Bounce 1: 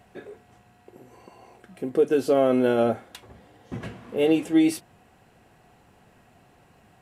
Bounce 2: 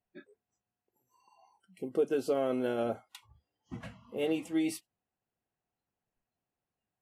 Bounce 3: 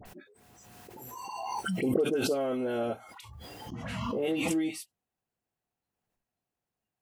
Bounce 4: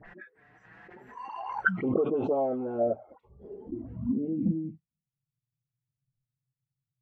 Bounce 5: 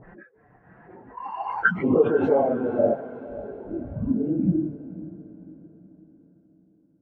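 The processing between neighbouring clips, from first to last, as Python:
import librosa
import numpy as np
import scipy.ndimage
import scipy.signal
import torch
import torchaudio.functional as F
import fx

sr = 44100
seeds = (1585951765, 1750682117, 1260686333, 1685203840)

y1 = fx.noise_reduce_blind(x, sr, reduce_db=25)
y1 = fx.hpss(y1, sr, part='harmonic', gain_db=-5)
y1 = F.gain(torch.from_numpy(y1), -6.5).numpy()
y2 = fx.dispersion(y1, sr, late='highs', ms=56.0, hz=1600.0)
y2 = fx.pre_swell(y2, sr, db_per_s=23.0)
y3 = fx.env_flanger(y2, sr, rest_ms=7.4, full_db=-25.0)
y3 = fx.filter_sweep_lowpass(y3, sr, from_hz=1800.0, to_hz=130.0, start_s=1.37, end_s=5.17, q=6.4)
y4 = fx.phase_scramble(y3, sr, seeds[0], window_ms=50)
y4 = fx.env_lowpass(y4, sr, base_hz=810.0, full_db=-25.5)
y4 = fx.echo_diffused(y4, sr, ms=530, feedback_pct=43, wet_db=-15)
y4 = F.gain(torch.from_numpy(y4), 6.0).numpy()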